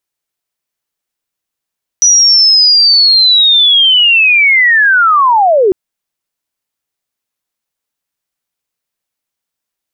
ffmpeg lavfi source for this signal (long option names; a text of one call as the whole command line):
ffmpeg -f lavfi -i "aevalsrc='pow(10,(-3.5-1.5*t/3.7)/20)*sin(2*PI*(5900*t-5550*t*t/(2*3.7)))':duration=3.7:sample_rate=44100" out.wav